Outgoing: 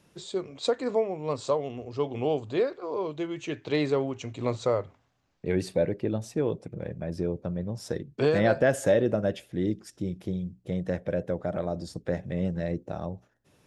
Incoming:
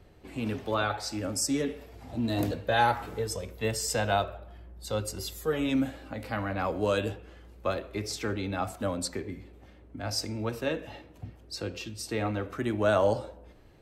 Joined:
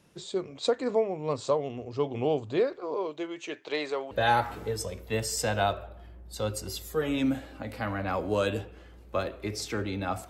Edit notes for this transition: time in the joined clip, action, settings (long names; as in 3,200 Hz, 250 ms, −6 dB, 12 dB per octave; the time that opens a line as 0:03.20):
outgoing
0:02.94–0:04.11: high-pass filter 280 Hz → 670 Hz
0:04.11: continue with incoming from 0:02.62